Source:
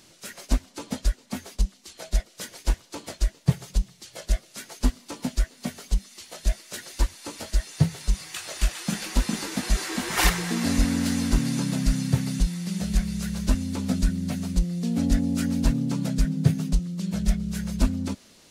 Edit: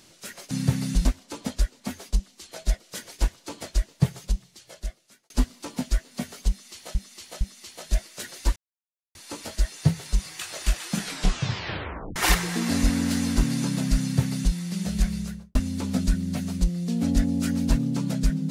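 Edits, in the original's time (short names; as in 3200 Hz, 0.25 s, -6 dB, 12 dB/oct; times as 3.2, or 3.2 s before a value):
3.55–4.76 fade out linear
5.95–6.41 loop, 3 plays
7.1 insert silence 0.59 s
8.93 tape stop 1.18 s
11.96–12.5 copy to 0.51
13.08–13.5 studio fade out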